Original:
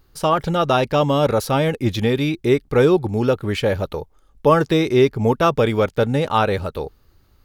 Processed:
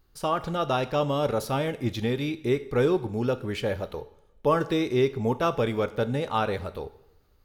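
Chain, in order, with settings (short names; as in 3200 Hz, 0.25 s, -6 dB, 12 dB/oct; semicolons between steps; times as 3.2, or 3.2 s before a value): two-slope reverb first 0.65 s, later 1.7 s, from -20 dB, DRR 12 dB; gain -8.5 dB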